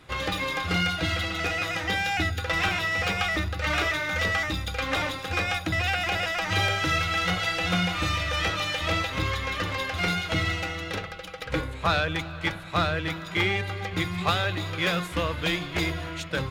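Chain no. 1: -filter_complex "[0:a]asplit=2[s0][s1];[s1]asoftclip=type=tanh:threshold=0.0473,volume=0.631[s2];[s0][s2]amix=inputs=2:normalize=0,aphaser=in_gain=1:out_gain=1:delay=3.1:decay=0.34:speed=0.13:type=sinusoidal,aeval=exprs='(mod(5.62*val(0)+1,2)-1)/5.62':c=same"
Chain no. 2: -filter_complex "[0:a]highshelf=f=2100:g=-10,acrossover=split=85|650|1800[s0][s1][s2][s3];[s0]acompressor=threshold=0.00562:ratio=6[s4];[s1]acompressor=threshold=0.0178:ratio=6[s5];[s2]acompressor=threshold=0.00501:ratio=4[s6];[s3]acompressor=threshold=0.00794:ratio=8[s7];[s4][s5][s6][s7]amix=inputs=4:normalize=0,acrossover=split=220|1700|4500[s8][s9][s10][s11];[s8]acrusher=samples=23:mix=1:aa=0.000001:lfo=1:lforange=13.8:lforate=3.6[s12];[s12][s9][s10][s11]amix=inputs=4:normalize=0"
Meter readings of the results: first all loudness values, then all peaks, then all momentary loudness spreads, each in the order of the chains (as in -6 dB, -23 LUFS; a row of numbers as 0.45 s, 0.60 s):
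-22.5 LUFS, -36.5 LUFS; -15.0 dBFS, -20.0 dBFS; 6 LU, 2 LU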